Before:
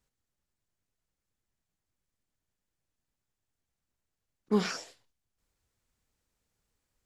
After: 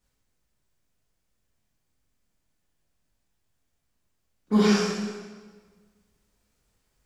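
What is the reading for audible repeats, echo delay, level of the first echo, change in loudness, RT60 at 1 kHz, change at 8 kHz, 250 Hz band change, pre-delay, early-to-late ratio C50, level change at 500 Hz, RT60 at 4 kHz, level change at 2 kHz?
no echo, no echo, no echo, +7.5 dB, 1.4 s, +8.0 dB, +11.0 dB, 3 ms, -1.0 dB, +7.5 dB, 1.2 s, +8.0 dB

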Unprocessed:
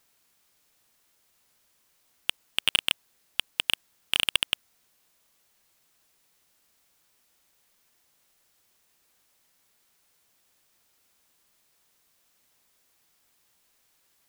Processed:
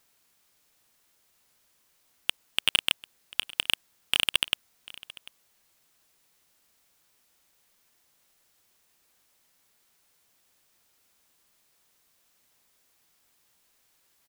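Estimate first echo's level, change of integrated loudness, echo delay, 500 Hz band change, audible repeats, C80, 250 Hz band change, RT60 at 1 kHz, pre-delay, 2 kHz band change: -20.5 dB, -0.5 dB, 744 ms, 0.0 dB, 1, no reverb, 0.0 dB, no reverb, no reverb, 0.0 dB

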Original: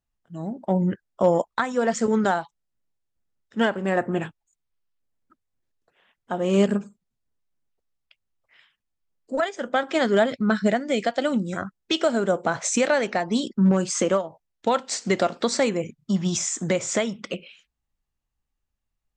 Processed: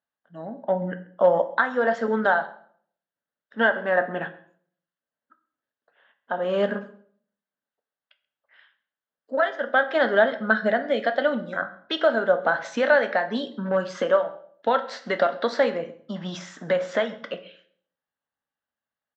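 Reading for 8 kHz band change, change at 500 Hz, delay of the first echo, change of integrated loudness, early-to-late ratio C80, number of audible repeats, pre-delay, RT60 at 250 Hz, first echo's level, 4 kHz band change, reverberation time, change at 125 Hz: under -20 dB, +1.5 dB, 133 ms, 0.0 dB, 17.5 dB, 1, 3 ms, 0.60 s, -23.5 dB, -3.0 dB, 0.55 s, -10.0 dB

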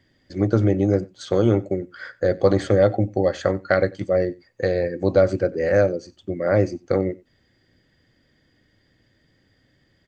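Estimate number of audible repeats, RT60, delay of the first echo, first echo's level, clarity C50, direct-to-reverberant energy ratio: 1, no reverb, 93 ms, -23.0 dB, no reverb, no reverb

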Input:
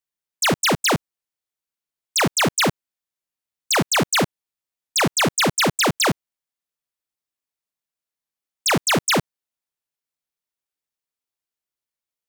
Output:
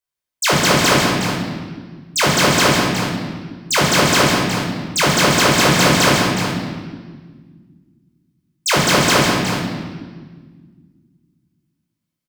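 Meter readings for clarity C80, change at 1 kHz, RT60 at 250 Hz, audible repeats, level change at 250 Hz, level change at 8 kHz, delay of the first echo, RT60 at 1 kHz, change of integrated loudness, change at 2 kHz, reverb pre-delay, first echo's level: 0.0 dB, +6.5 dB, 2.7 s, 2, +7.0 dB, +4.5 dB, 139 ms, 1.5 s, +4.5 dB, +6.5 dB, 14 ms, -6.5 dB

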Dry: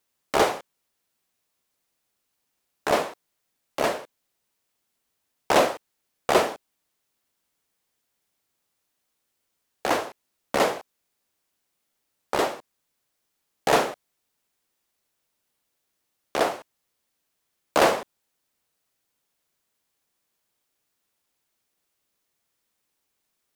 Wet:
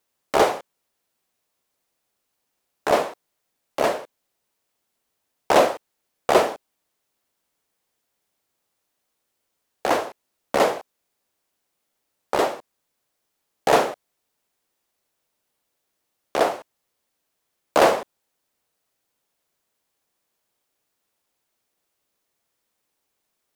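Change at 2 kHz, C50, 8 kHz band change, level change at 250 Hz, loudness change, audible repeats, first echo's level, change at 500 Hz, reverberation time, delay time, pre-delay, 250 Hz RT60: +1.0 dB, no reverb, 0.0 dB, +2.0 dB, +3.0 dB, no echo, no echo, +3.5 dB, no reverb, no echo, no reverb, no reverb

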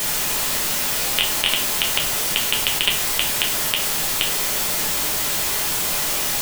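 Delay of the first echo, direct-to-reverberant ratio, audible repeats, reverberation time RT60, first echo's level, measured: no echo, -1.0 dB, no echo, 0.55 s, no echo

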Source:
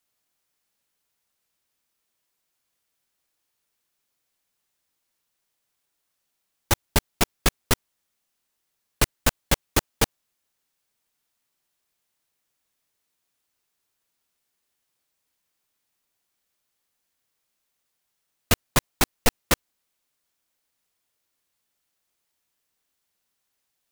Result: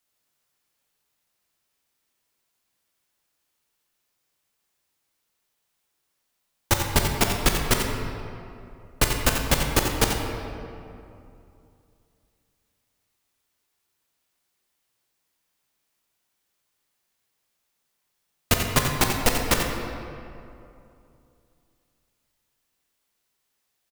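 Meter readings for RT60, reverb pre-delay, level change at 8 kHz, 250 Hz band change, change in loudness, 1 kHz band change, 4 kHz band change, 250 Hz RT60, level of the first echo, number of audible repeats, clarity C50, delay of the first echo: 2.7 s, 15 ms, +1.5 dB, +3.0 dB, +1.5 dB, +3.0 dB, +2.0 dB, 3.0 s, -8.0 dB, 1, 2.0 dB, 88 ms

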